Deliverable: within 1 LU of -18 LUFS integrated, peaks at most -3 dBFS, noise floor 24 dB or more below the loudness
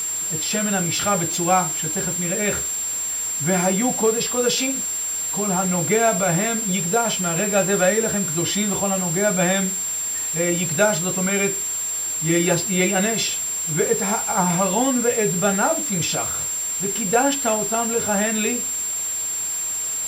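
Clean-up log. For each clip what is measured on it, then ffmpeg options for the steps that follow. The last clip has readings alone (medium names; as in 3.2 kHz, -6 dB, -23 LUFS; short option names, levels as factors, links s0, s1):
steady tone 7.4 kHz; tone level -23 dBFS; noise floor -26 dBFS; noise floor target -44 dBFS; loudness -20.0 LUFS; peak level -4.5 dBFS; loudness target -18.0 LUFS
-> -af "bandreject=f=7400:w=30"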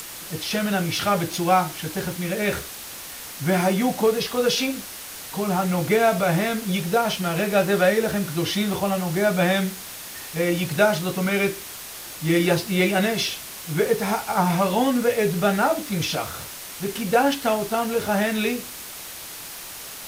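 steady tone not found; noise floor -37 dBFS; noise floor target -47 dBFS
-> -af "afftdn=nr=10:nf=-37"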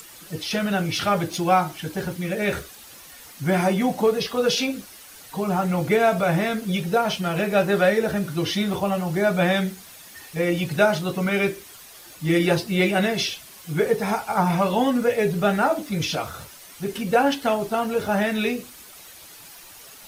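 noise floor -45 dBFS; noise floor target -47 dBFS
-> -af "afftdn=nr=6:nf=-45"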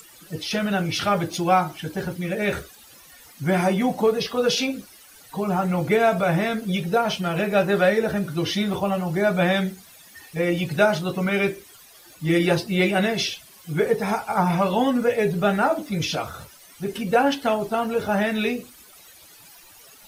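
noise floor -49 dBFS; loudness -23.0 LUFS; peak level -5.5 dBFS; loudness target -18.0 LUFS
-> -af "volume=1.78,alimiter=limit=0.708:level=0:latency=1"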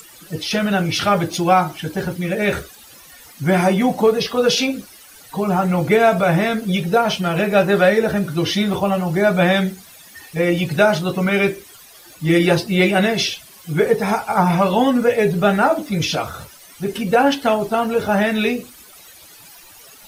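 loudness -18.0 LUFS; peak level -3.0 dBFS; noise floor -44 dBFS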